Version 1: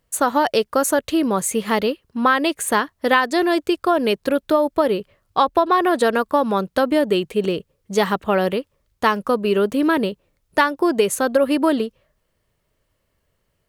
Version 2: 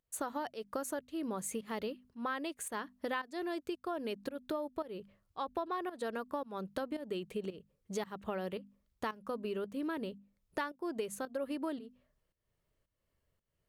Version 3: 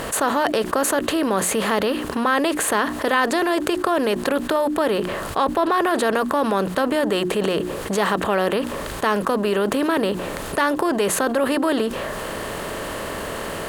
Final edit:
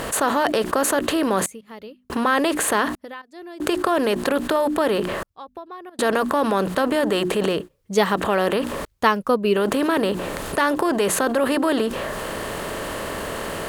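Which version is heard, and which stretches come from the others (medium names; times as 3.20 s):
3
1.46–2.10 s: from 2
2.95–3.60 s: from 2
5.23–5.99 s: from 2
7.57–8.13 s: from 1, crossfade 0.24 s
8.85–9.56 s: from 1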